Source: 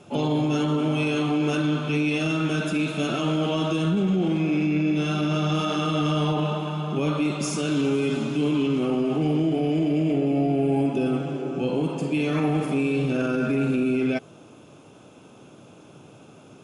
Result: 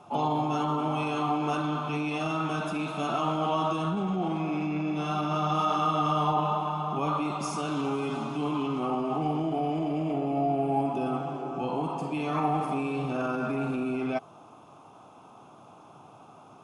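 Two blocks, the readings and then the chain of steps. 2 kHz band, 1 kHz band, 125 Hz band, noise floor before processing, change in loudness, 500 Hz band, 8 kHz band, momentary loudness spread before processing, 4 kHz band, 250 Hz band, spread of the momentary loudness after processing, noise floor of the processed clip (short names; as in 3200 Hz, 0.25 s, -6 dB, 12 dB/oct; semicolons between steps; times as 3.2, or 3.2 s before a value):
-7.0 dB, +5.0 dB, -7.5 dB, -49 dBFS, -5.0 dB, -5.5 dB, -8.0 dB, 3 LU, -7.5 dB, -7.5 dB, 5 LU, -52 dBFS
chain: band shelf 930 Hz +13.5 dB 1.1 oct; notch 7200 Hz, Q 15; gain -7.5 dB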